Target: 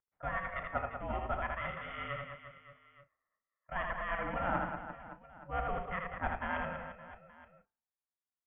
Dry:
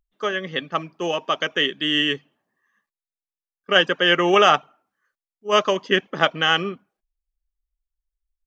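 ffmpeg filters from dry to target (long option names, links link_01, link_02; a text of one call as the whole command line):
ffmpeg -i in.wav -filter_complex "[0:a]areverse,acompressor=threshold=-29dB:ratio=6,areverse,highpass=frequency=490:width_type=q:width=0.5412,highpass=frequency=490:width_type=q:width=1.307,lowpass=frequency=2100:width_type=q:width=0.5176,lowpass=frequency=2100:width_type=q:width=0.7071,lowpass=frequency=2100:width_type=q:width=1.932,afreqshift=-210,aeval=exprs='val(0)*sin(2*PI*350*n/s)':channel_layout=same,asplit=2[link_01][link_02];[link_02]adelay=35,volume=-13dB[link_03];[link_01][link_03]amix=inputs=2:normalize=0,aecho=1:1:80|192|348.8|568.3|875.6:0.631|0.398|0.251|0.158|0.1" out.wav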